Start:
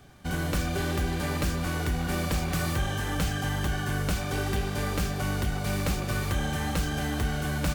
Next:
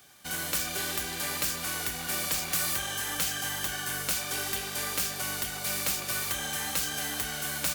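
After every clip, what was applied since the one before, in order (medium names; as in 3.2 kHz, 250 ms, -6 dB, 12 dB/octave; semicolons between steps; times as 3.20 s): tilt EQ +4 dB/octave; trim -3.5 dB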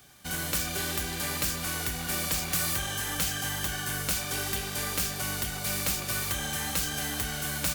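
bass shelf 200 Hz +10 dB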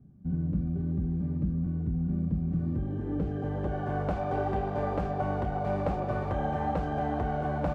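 low-pass sweep 200 Hz -> 710 Hz, 2.42–4.01 s; trim +5 dB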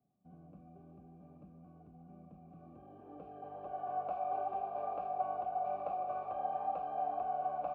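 vowel filter a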